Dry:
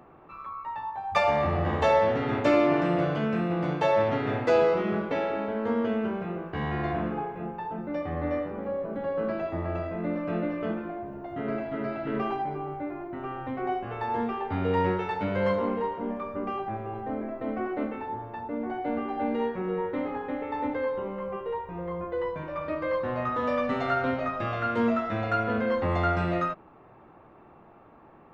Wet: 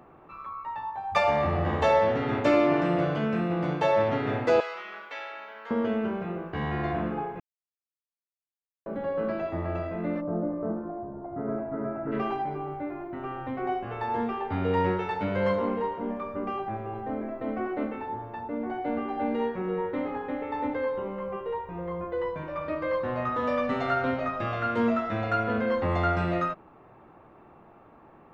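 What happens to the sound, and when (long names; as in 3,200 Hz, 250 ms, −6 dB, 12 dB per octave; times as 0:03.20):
0:04.60–0:05.71: high-pass filter 1,400 Hz
0:07.40–0:08.86: silence
0:10.20–0:12.11: low-pass filter 1,000 Hz → 1,500 Hz 24 dB per octave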